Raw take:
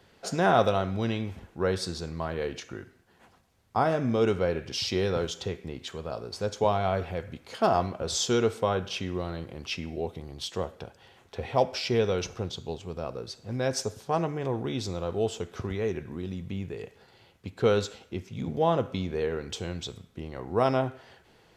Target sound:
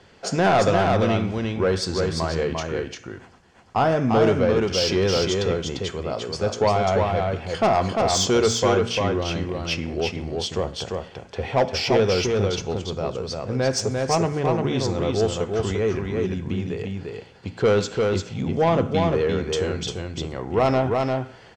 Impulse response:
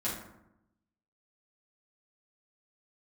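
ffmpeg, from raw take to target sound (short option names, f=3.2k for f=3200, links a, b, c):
-af "lowpass=f=8.2k:w=0.5412,lowpass=f=8.2k:w=1.3066,bandreject=f=3.8k:w=13,bandreject=f=58.37:t=h:w=4,bandreject=f=116.74:t=h:w=4,bandreject=f=175.11:t=h:w=4,bandreject=f=233.48:t=h:w=4,bandreject=f=291.85:t=h:w=4,asoftclip=type=tanh:threshold=-19.5dB,aecho=1:1:347:0.668,volume=7.5dB"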